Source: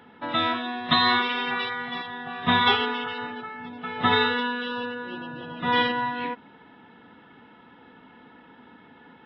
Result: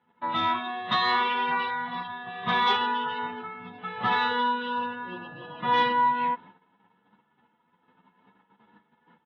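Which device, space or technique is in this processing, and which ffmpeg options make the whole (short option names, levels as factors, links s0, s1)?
barber-pole flanger into a guitar amplifier: -filter_complex "[0:a]asettb=1/sr,asplit=3[s0][s1][s2];[s0]atrim=end=2.754[s3];[s1]atrim=start=2.75:end=3.15,asetpts=PTS-STARTPTS,afade=t=in:d=0.004:c=qsin,afade=t=out:st=0.396:d=0.004:c=qsin,bandreject=f=2200:w=11[s4];[s2]atrim=start=3.146[s5];[s3][s4]acrossfade=d=0.004:c1=hsin:c2=qsin[s6];[s6][s5]acrossfade=d=0.004:c1=qsin:c2=hsin,agate=range=0.126:threshold=0.00398:ratio=16:detection=peak,asplit=2[s7][s8];[s8]adelay=9.8,afreqshift=0.66[s9];[s7][s9]amix=inputs=2:normalize=1,asoftclip=type=tanh:threshold=0.119,highpass=84,equalizer=f=190:t=q:w=4:g=7,equalizer=f=270:t=q:w=4:g=-6,equalizer=f=1000:t=q:w=4:g=8,lowpass=f=4400:w=0.5412,lowpass=f=4400:w=1.3066"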